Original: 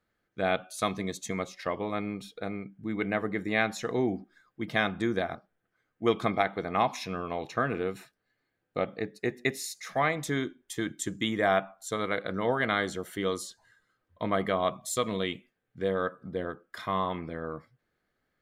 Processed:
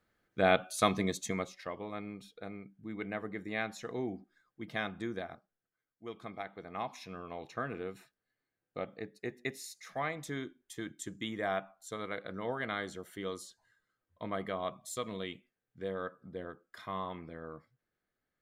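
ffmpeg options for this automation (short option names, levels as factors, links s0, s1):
-af "volume=3.76,afade=t=out:st=1.02:d=0.65:silence=0.298538,afade=t=out:st=4.99:d=1.09:silence=0.316228,afade=t=in:st=6.08:d=1.38:silence=0.316228"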